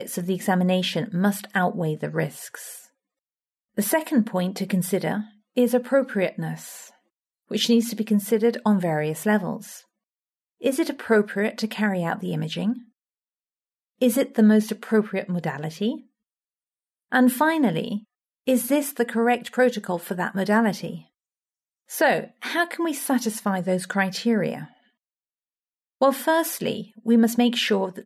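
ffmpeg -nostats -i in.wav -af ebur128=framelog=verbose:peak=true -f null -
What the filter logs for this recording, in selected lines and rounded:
Integrated loudness:
  I:         -23.4 LUFS
  Threshold: -33.9 LUFS
Loudness range:
  LRA:         3.0 LU
  Threshold: -44.8 LUFS
  LRA low:   -26.6 LUFS
  LRA high:  -23.6 LUFS
True peak:
  Peak:       -9.2 dBFS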